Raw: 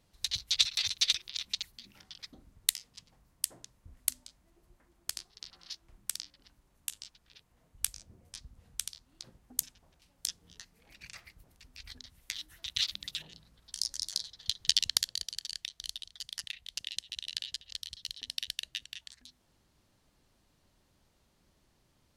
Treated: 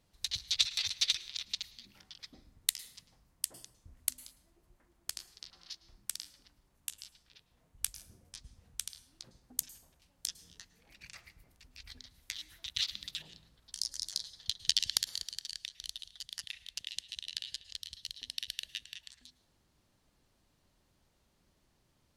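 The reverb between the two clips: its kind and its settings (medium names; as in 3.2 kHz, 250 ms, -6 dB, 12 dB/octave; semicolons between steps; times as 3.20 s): plate-style reverb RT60 0.81 s, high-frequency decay 0.6×, pre-delay 95 ms, DRR 16.5 dB; trim -2.5 dB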